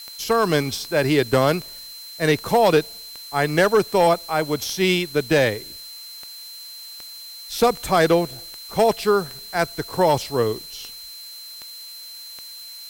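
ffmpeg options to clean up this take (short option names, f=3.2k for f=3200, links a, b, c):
-af "adeclick=t=4,bandreject=f=4.1k:w=30,afftdn=nr=26:nf=-39"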